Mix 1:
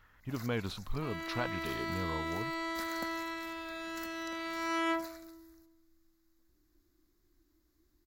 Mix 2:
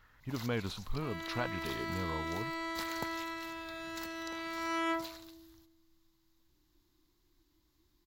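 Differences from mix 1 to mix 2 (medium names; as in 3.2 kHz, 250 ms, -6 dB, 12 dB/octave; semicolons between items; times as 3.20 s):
first sound: remove static phaser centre 620 Hz, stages 8; reverb: off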